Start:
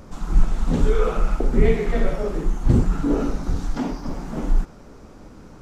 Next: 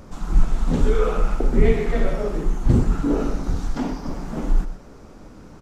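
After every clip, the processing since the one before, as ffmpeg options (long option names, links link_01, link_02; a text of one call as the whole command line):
ffmpeg -i in.wav -af "aecho=1:1:124:0.251" out.wav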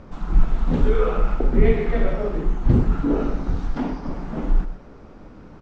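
ffmpeg -i in.wav -af "lowpass=3400" out.wav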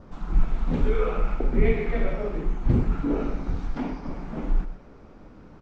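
ffmpeg -i in.wav -af "adynamicequalizer=threshold=0.00158:dfrequency=2300:dqfactor=5.4:tfrequency=2300:tqfactor=5.4:attack=5:release=100:ratio=0.375:range=3.5:mode=boostabove:tftype=bell,volume=-4.5dB" out.wav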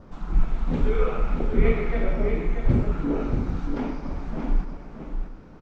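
ffmpeg -i in.wav -af "aecho=1:1:632:0.473" out.wav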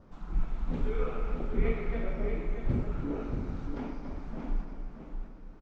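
ffmpeg -i in.wav -filter_complex "[0:a]asplit=2[link_01][link_02];[link_02]adelay=279.9,volume=-10dB,highshelf=frequency=4000:gain=-6.3[link_03];[link_01][link_03]amix=inputs=2:normalize=0,volume=-9dB" out.wav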